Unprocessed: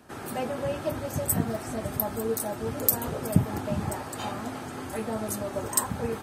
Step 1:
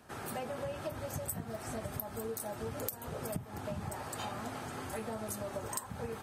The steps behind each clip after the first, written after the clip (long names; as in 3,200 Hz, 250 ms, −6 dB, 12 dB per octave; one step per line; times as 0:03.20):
parametric band 290 Hz −5.5 dB 0.83 octaves
downward compressor 12 to 1, threshold −32 dBFS, peak gain reduction 17.5 dB
level −3 dB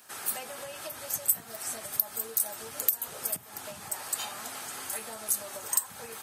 spectral tilt +4.5 dB per octave
soft clipping −9.5 dBFS, distortion −14 dB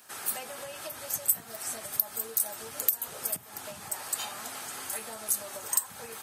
no processing that can be heard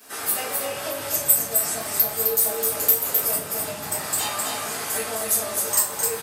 on a send: single-tap delay 259 ms −4 dB
on the sum: rectangular room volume 43 cubic metres, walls mixed, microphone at 1.8 metres